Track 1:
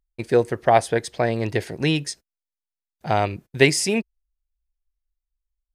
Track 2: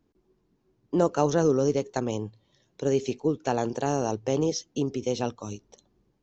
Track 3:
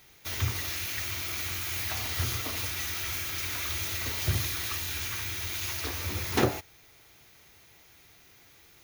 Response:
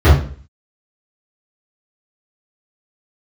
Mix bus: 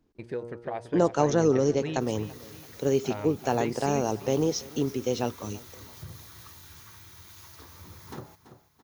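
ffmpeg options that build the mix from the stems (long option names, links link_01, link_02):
-filter_complex "[0:a]aemphasis=mode=reproduction:type=75kf,bandreject=frequency=118.3:width_type=h:width=4,bandreject=frequency=236.6:width_type=h:width=4,bandreject=frequency=354.9:width_type=h:width=4,bandreject=frequency=473.2:width_type=h:width=4,bandreject=frequency=591.5:width_type=h:width=4,bandreject=frequency=709.8:width_type=h:width=4,bandreject=frequency=828.1:width_type=h:width=4,bandreject=frequency=946.4:width_type=h:width=4,bandreject=frequency=1064.7:width_type=h:width=4,bandreject=frequency=1183:width_type=h:width=4,bandreject=frequency=1301.3:width_type=h:width=4,bandreject=frequency=1419.6:width_type=h:width=4,alimiter=limit=-9dB:level=0:latency=1:release=177,volume=-6.5dB,asplit=2[link_01][link_02];[link_02]volume=-17dB[link_03];[1:a]volume=0dB,asplit=2[link_04][link_05];[link_05]volume=-21.5dB[link_06];[2:a]equalizer=frequency=160:width_type=o:width=0.67:gain=11,equalizer=frequency=1000:width_type=o:width=0.67:gain=7,equalizer=frequency=2500:width_type=o:width=0.67:gain=-8,adelay=1750,volume=-15dB,asplit=2[link_07][link_08];[link_08]volume=-16dB[link_09];[link_01][link_07]amix=inputs=2:normalize=0,bandreject=frequency=720:width=16,acompressor=threshold=-43dB:ratio=1.5,volume=0dB[link_10];[link_03][link_06][link_09]amix=inputs=3:normalize=0,aecho=0:1:334|668|1002|1336|1670|2004:1|0.43|0.185|0.0795|0.0342|0.0147[link_11];[link_04][link_10][link_11]amix=inputs=3:normalize=0"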